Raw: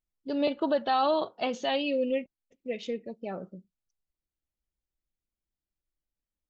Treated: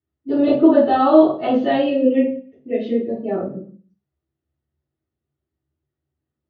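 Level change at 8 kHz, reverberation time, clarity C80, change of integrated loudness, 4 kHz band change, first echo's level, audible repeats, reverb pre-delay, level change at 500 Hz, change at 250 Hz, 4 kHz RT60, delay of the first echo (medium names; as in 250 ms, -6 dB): no reading, 0.45 s, 9.5 dB, +12.5 dB, 0.0 dB, no echo, no echo, 3 ms, +12.0 dB, +16.5 dB, 0.40 s, no echo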